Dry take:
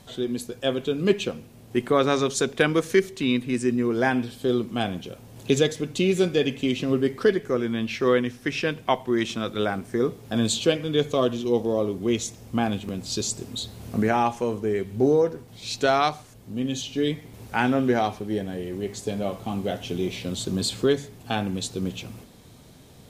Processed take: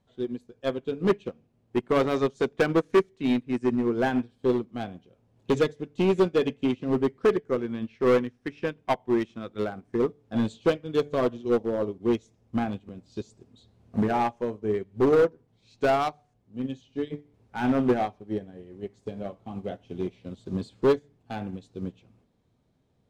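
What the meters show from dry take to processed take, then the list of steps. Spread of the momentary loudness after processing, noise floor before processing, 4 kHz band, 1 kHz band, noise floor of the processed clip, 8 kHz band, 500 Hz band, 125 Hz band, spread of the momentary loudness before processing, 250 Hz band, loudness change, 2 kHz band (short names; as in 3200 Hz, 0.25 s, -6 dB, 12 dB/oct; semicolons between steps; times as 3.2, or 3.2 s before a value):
15 LU, -49 dBFS, -11.5 dB, -3.0 dB, -69 dBFS, under -15 dB, -1.5 dB, -4.5 dB, 9 LU, -2.5 dB, -2.0 dB, -6.0 dB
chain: LPF 8200 Hz 12 dB/oct; high shelf 2400 Hz -11.5 dB; de-hum 146.3 Hz, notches 6; overloaded stage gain 19 dB; upward expander 2.5:1, over -36 dBFS; gain +5 dB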